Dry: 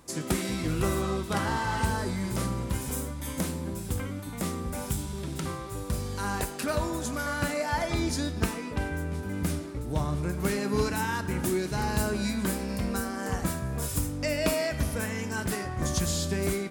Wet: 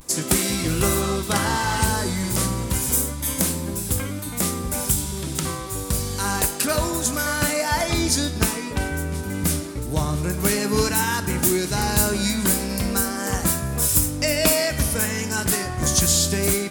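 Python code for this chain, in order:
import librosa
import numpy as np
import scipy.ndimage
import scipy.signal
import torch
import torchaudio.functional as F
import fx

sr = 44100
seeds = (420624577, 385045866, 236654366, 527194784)

y = fx.vibrato(x, sr, rate_hz=0.31, depth_cents=31.0)
y = fx.high_shelf(y, sr, hz=4200.0, db=11.5)
y = y * 10.0 ** (5.5 / 20.0)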